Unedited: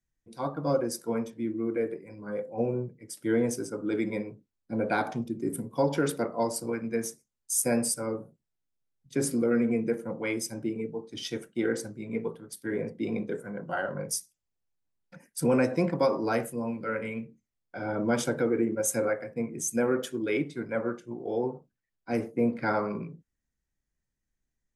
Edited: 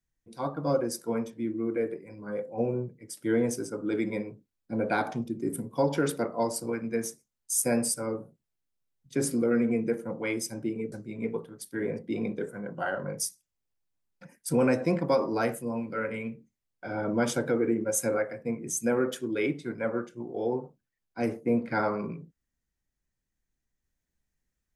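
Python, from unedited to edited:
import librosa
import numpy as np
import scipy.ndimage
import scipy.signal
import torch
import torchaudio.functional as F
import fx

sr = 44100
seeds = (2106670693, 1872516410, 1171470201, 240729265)

y = fx.edit(x, sr, fx.cut(start_s=10.92, length_s=0.91), tone=tone)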